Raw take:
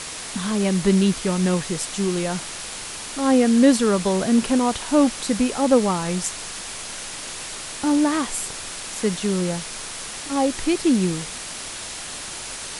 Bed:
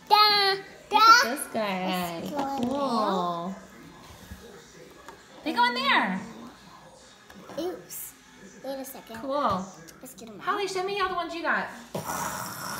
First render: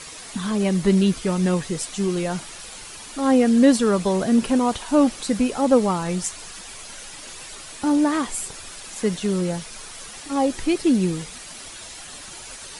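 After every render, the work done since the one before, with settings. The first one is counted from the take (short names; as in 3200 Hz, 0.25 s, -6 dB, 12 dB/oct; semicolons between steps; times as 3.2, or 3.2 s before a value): denoiser 9 dB, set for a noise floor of -34 dBFS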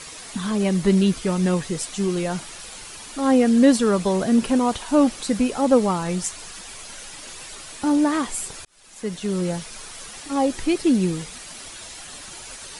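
8.65–9.48 fade in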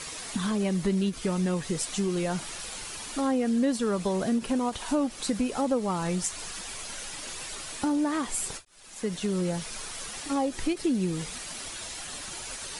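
compressor 3:1, threshold -26 dBFS, peak gain reduction 12 dB; ending taper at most 340 dB/s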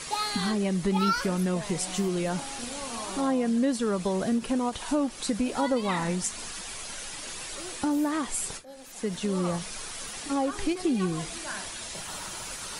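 add bed -12 dB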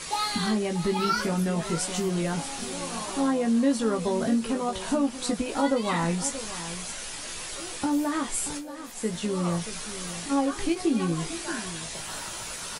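doubler 18 ms -4.5 dB; echo 0.63 s -12.5 dB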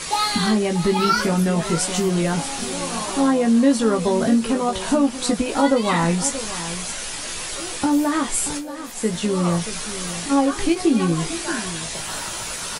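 gain +7 dB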